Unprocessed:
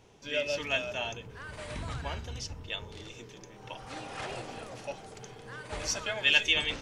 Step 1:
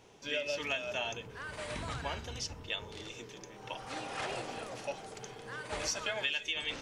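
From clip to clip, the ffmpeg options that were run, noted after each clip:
ffmpeg -i in.wav -af "lowshelf=frequency=150:gain=-8.5,acompressor=threshold=-32dB:ratio=16,volume=1.5dB" out.wav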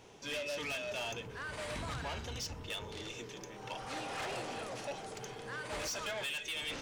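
ffmpeg -i in.wav -af "asoftclip=type=tanh:threshold=-37.5dB,volume=2.5dB" out.wav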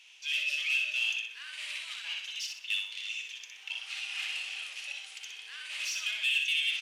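ffmpeg -i in.wav -af "highpass=frequency=2700:width_type=q:width=4,aecho=1:1:62|124|186|248|310:0.562|0.208|0.077|0.0285|0.0105,aresample=32000,aresample=44100" out.wav

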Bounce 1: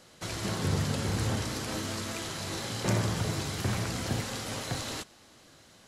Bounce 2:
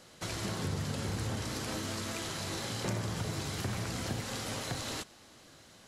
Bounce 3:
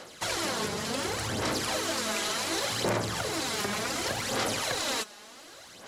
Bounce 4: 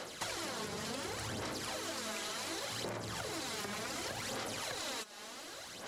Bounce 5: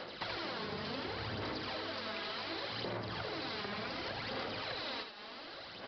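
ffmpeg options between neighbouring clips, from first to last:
ffmpeg -i in.wav -af "acompressor=threshold=-34dB:ratio=2.5" out.wav
ffmpeg -i in.wav -af "aphaser=in_gain=1:out_gain=1:delay=4.9:decay=0.55:speed=0.68:type=sinusoidal,aeval=exprs='0.158*sin(PI/2*1.58*val(0)/0.158)':channel_layout=same,bass=frequency=250:gain=-14,treble=frequency=4000:gain=-1" out.wav
ffmpeg -i in.wav -af "acompressor=threshold=-38dB:ratio=12,volume=1dB" out.wav
ffmpeg -i in.wav -filter_complex "[0:a]asplit=2[link_01][link_02];[link_02]aecho=0:1:80:0.447[link_03];[link_01][link_03]amix=inputs=2:normalize=0,aresample=11025,aresample=44100" out.wav

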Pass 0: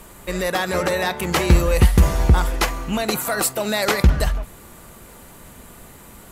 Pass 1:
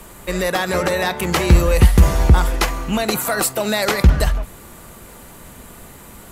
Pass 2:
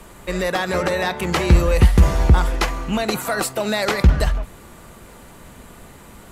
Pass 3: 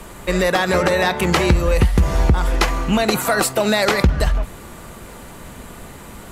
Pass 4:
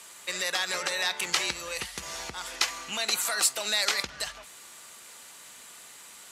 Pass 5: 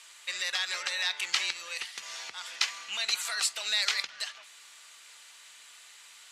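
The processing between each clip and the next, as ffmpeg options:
ffmpeg -i in.wav -filter_complex "[0:a]acrossover=split=180[link_01][link_02];[link_02]acompressor=threshold=-17dB:ratio=6[link_03];[link_01][link_03]amix=inputs=2:normalize=0,volume=3dB" out.wav
ffmpeg -i in.wav -af "highshelf=frequency=10000:gain=-11.5,volume=-1.5dB" out.wav
ffmpeg -i in.wav -af "acompressor=threshold=-17dB:ratio=6,volume=5.5dB" out.wav
ffmpeg -i in.wav -af "bandpass=frequency=6100:width_type=q:width=0.83:csg=0" out.wav
ffmpeg -i in.wav -af "bandpass=frequency=3100:width_type=q:width=0.73:csg=0" out.wav

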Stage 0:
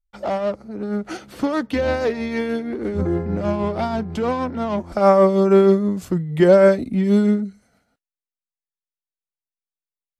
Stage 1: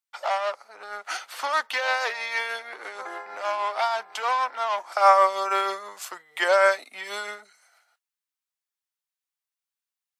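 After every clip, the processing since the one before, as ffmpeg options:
ffmpeg -i in.wav -af "highpass=frequency=840:width=0.5412,highpass=frequency=840:width=1.3066,volume=5dB" out.wav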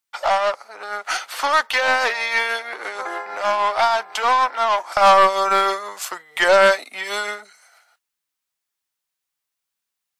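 ffmpeg -i in.wav -af "aeval=exprs='0.501*(cos(1*acos(clip(val(0)/0.501,-1,1)))-cos(1*PI/2))+0.0891*(cos(5*acos(clip(val(0)/0.501,-1,1)))-cos(5*PI/2))+0.0251*(cos(6*acos(clip(val(0)/0.501,-1,1)))-cos(6*PI/2))':channel_layout=same,volume=2.5dB" out.wav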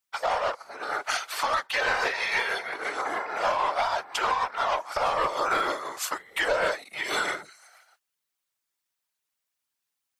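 ffmpeg -i in.wav -filter_complex "[0:a]afftfilt=real='hypot(re,im)*cos(2*PI*random(0))':imag='hypot(re,im)*sin(2*PI*random(1))':win_size=512:overlap=0.75,asplit=2[link_01][link_02];[link_02]acompressor=threshold=-28dB:ratio=6,volume=-1dB[link_03];[link_01][link_03]amix=inputs=2:normalize=0,alimiter=limit=-14dB:level=0:latency=1:release=494,volume=-1dB" out.wav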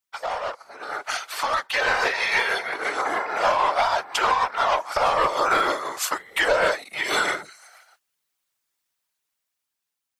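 ffmpeg -i in.wav -af "dynaudnorm=framelen=440:gausssize=7:maxgain=7dB,volume=-2dB" out.wav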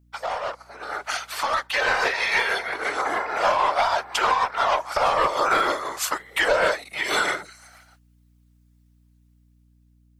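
ffmpeg -i in.wav -af "aeval=exprs='val(0)+0.00141*(sin(2*PI*60*n/s)+sin(2*PI*2*60*n/s)/2+sin(2*PI*3*60*n/s)/3+sin(2*PI*4*60*n/s)/4+sin(2*PI*5*60*n/s)/5)':channel_layout=same" out.wav

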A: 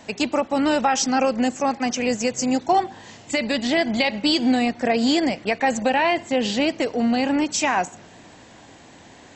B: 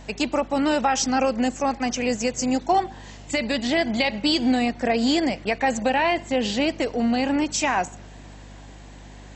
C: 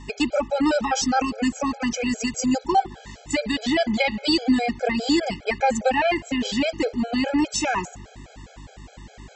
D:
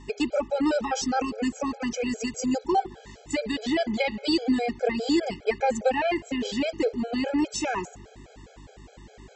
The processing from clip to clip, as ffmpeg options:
ffmpeg -i in.wav -af "aeval=exprs='val(0)+0.00891*(sin(2*PI*50*n/s)+sin(2*PI*2*50*n/s)/2+sin(2*PI*3*50*n/s)/3+sin(2*PI*4*50*n/s)/4+sin(2*PI*5*50*n/s)/5)':channel_layout=same,volume=-1.5dB" out.wav
ffmpeg -i in.wav -af "afftfilt=real='re*gt(sin(2*PI*4.9*pts/sr)*(1-2*mod(floor(b*sr/1024/430),2)),0)':imag='im*gt(sin(2*PI*4.9*pts/sr)*(1-2*mod(floor(b*sr/1024/430),2)),0)':win_size=1024:overlap=0.75,volume=3dB" out.wav
ffmpeg -i in.wav -af "equalizer=frequency=420:width=2.2:gain=9,volume=-6dB" out.wav

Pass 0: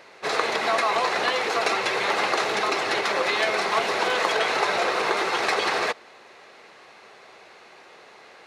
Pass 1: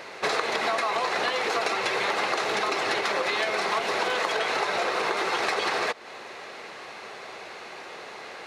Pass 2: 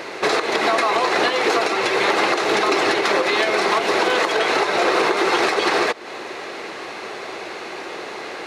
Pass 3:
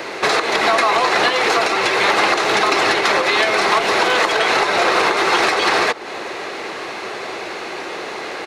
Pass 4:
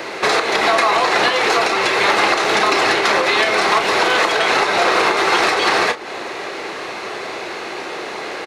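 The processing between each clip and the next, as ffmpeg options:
ffmpeg -i in.wav -af "acompressor=threshold=-32dB:ratio=6,volume=8dB" out.wav
ffmpeg -i in.wav -af "equalizer=frequency=330:width_type=o:width=0.64:gain=8,alimiter=limit=-15.5dB:level=0:latency=1:release=242,volume=8dB" out.wav
ffmpeg -i in.wav -filter_complex "[0:a]acrossover=split=230|540|3400[link_01][link_02][link_03][link_04];[link_02]asoftclip=type=tanh:threshold=-32dB[link_05];[link_01][link_05][link_03][link_04]amix=inputs=4:normalize=0,asplit=2[link_06][link_07];[link_07]adelay=1399,volume=-20dB,highshelf=frequency=4000:gain=-31.5[link_08];[link_06][link_08]amix=inputs=2:normalize=0,volume=4dB" out.wav
ffmpeg -i in.wav -filter_complex "[0:a]asplit=2[link_01][link_02];[link_02]adelay=33,volume=-10dB[link_03];[link_01][link_03]amix=inputs=2:normalize=0" out.wav

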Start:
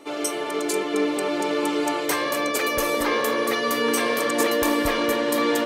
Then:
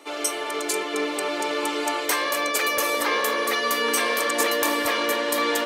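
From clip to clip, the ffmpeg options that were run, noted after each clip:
ffmpeg -i in.wav -af "highpass=frequency=770:poles=1,volume=2.5dB" out.wav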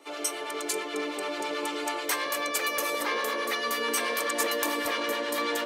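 ffmpeg -i in.wav -filter_complex "[0:a]acrossover=split=800[link_01][link_02];[link_01]aeval=exprs='val(0)*(1-0.5/2+0.5/2*cos(2*PI*9.2*n/s))':channel_layout=same[link_03];[link_02]aeval=exprs='val(0)*(1-0.5/2-0.5/2*cos(2*PI*9.2*n/s))':channel_layout=same[link_04];[link_03][link_04]amix=inputs=2:normalize=0,volume=-3.5dB" out.wav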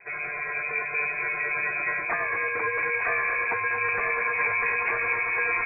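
ffmpeg -i in.wav -filter_complex "[0:a]acrossover=split=360|1200|2100[link_01][link_02][link_03][link_04];[link_03]asoftclip=type=tanh:threshold=-33.5dB[link_05];[link_01][link_02][link_05][link_04]amix=inputs=4:normalize=0,lowpass=frequency=2400:width_type=q:width=0.5098,lowpass=frequency=2400:width_type=q:width=0.6013,lowpass=frequency=2400:width_type=q:width=0.9,lowpass=frequency=2400:width_type=q:width=2.563,afreqshift=-2800,volume=4.5dB" out.wav

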